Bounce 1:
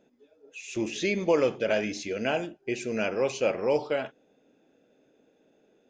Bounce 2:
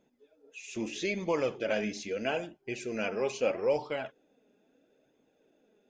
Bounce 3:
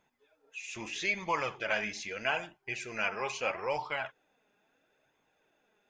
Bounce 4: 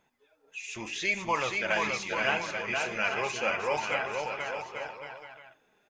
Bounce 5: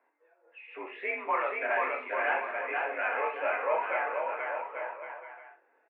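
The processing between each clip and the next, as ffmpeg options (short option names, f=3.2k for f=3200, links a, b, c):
-af "flanger=delay=0.9:depth=4:regen=44:speed=0.77:shape=sinusoidal"
-af "equalizer=f=250:t=o:w=1:g=-11,equalizer=f=500:t=o:w=1:g=-8,equalizer=f=1k:t=o:w=1:g=8,equalizer=f=2k:t=o:w=1:g=5"
-af "aecho=1:1:480|840|1110|1312|1464:0.631|0.398|0.251|0.158|0.1,volume=2.5dB"
-af "volume=21.5dB,asoftclip=hard,volume=-21.5dB,highpass=f=280:t=q:w=0.5412,highpass=f=280:t=q:w=1.307,lowpass=f=2.1k:t=q:w=0.5176,lowpass=f=2.1k:t=q:w=0.7071,lowpass=f=2.1k:t=q:w=1.932,afreqshift=57,aecho=1:1:24|63:0.531|0.316"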